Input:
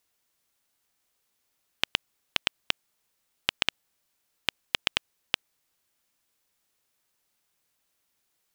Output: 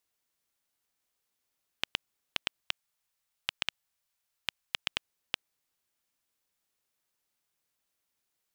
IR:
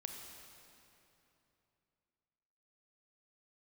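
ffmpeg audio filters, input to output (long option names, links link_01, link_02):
-filter_complex "[0:a]asettb=1/sr,asplit=3[link_01][link_02][link_03];[link_01]atrim=end=2.614[link_04];[link_02]atrim=start=2.61:end=4.88,asetpts=PTS-STARTPTS,afade=type=in:duration=0.004:curve=qsin,afade=type=out:start_time=2.266:duration=0.004:curve=qsin,equalizer=frequency=300:width=1.1:gain=-12[link_05];[link_03]atrim=start=4.876[link_06];[link_04][link_05]acrossfade=duration=0.004:curve1=hsin:curve2=qsin[link_07];[link_07][link_06]acrossfade=duration=0.004:curve1=qsin:curve2=hsin,volume=-6.5dB"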